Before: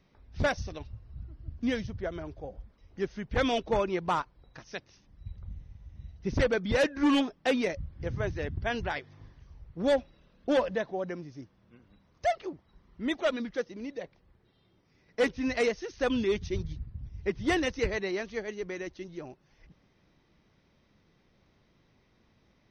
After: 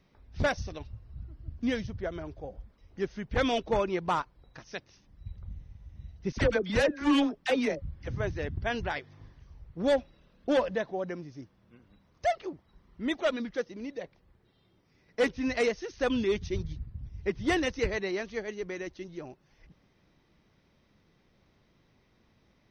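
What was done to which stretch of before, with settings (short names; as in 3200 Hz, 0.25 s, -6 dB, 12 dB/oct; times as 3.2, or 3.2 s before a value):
6.32–8.08 dispersion lows, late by 50 ms, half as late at 680 Hz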